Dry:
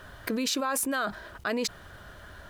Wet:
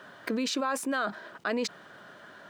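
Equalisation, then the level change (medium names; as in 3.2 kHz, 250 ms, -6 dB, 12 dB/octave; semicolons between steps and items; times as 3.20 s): high-pass 170 Hz 24 dB/octave; treble shelf 5 kHz -6.5 dB; peaking EQ 12 kHz -11.5 dB 0.37 oct; 0.0 dB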